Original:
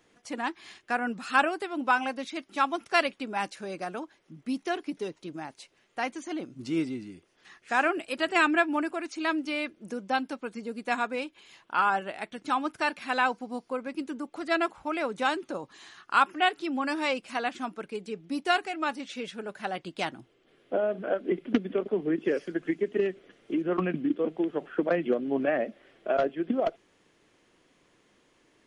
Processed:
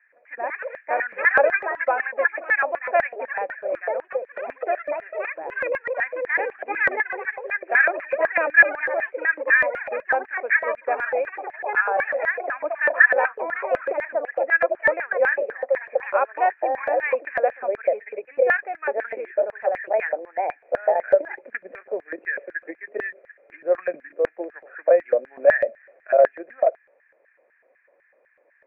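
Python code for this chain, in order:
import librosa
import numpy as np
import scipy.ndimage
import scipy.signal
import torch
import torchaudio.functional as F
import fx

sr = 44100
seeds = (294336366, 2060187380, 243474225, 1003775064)

y = fx.echo_pitch(x, sr, ms=169, semitones=4, count=3, db_per_echo=-3.0)
y = scipy.signal.sosfilt(scipy.signal.cheby1(6, 6, 2500.0, 'lowpass', fs=sr, output='sos'), y)
y = fx.filter_lfo_highpass(y, sr, shape='square', hz=4.0, low_hz=550.0, high_hz=1700.0, q=6.5)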